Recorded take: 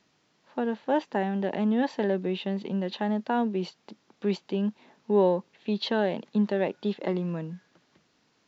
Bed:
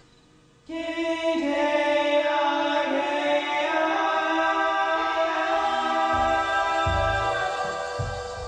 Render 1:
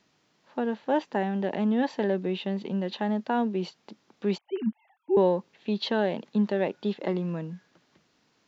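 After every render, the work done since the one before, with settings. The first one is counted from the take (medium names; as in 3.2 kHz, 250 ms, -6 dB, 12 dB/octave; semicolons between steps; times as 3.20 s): 4.38–5.17 s: formants replaced by sine waves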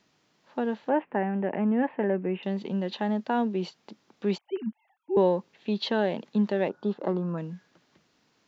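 0.89–2.43 s: steep low-pass 2.6 kHz 48 dB/octave; 4.57–5.16 s: gain -4.5 dB; 6.69–7.38 s: resonant high shelf 1.7 kHz -8 dB, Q 3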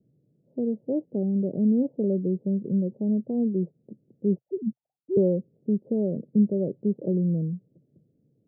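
steep low-pass 550 Hz 48 dB/octave; peaking EQ 130 Hz +14 dB 0.88 oct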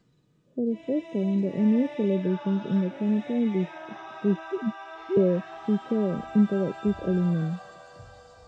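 add bed -18 dB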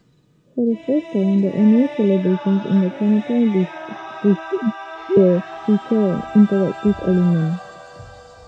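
trim +8.5 dB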